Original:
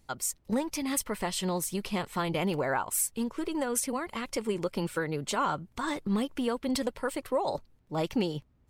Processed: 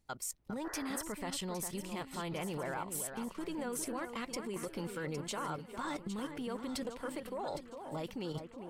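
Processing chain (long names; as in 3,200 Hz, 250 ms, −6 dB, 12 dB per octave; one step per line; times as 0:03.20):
output level in coarse steps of 12 dB
delay that swaps between a low-pass and a high-pass 405 ms, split 2,300 Hz, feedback 69%, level −7.5 dB
sound drawn into the spectrogram noise, 0:00.64–0:01.03, 280–2,000 Hz −44 dBFS
level −3 dB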